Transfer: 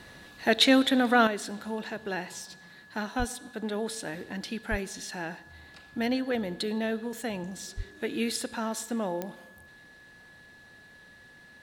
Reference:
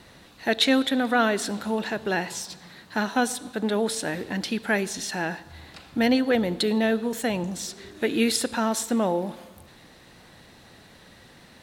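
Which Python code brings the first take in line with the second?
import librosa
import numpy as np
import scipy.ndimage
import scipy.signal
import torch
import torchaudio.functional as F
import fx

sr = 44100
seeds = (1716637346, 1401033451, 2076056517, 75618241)

y = fx.fix_declick_ar(x, sr, threshold=10.0)
y = fx.notch(y, sr, hz=1700.0, q=30.0)
y = fx.highpass(y, sr, hz=140.0, slope=24, at=(3.18, 3.3), fade=0.02)
y = fx.highpass(y, sr, hz=140.0, slope=24, at=(4.7, 4.82), fade=0.02)
y = fx.highpass(y, sr, hz=140.0, slope=24, at=(7.76, 7.88), fade=0.02)
y = fx.fix_level(y, sr, at_s=1.27, step_db=7.5)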